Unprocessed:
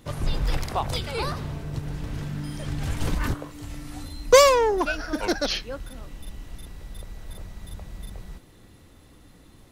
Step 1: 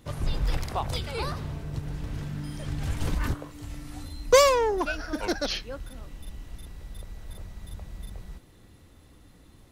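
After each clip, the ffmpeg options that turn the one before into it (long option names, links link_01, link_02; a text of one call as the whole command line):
ffmpeg -i in.wav -af "equalizer=frequency=64:width=0.97:gain=3.5,volume=-3.5dB" out.wav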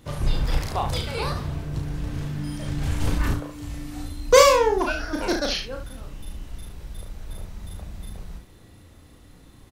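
ffmpeg -i in.wav -af "aecho=1:1:34|71:0.596|0.398,volume=2.5dB" out.wav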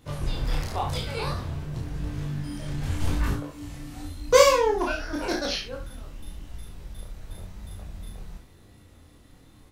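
ffmpeg -i in.wav -af "flanger=delay=19.5:depth=6.7:speed=0.91" out.wav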